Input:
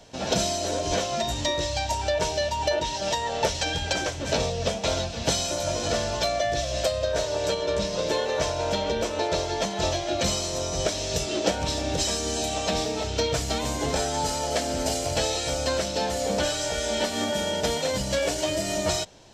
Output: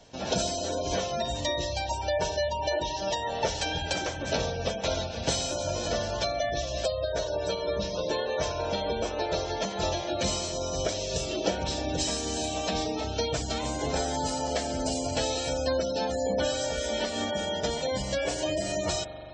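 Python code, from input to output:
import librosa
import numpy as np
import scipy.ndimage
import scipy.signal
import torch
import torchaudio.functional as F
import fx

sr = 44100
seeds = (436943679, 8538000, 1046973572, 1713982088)

y = fx.rev_spring(x, sr, rt60_s=3.1, pass_ms=(42,), chirp_ms=65, drr_db=8.5)
y = fx.spec_gate(y, sr, threshold_db=-25, keep='strong')
y = F.gain(torch.from_numpy(y), -3.5).numpy()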